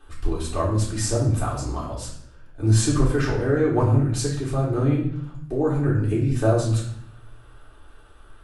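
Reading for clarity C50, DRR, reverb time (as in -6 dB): 4.0 dB, -6.0 dB, 0.70 s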